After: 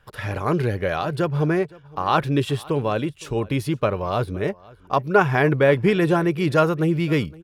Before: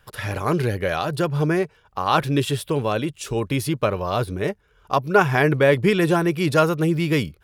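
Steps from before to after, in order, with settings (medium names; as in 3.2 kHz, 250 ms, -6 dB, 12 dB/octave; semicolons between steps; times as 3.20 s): treble shelf 4.4 kHz -9.5 dB; delay 514 ms -23.5 dB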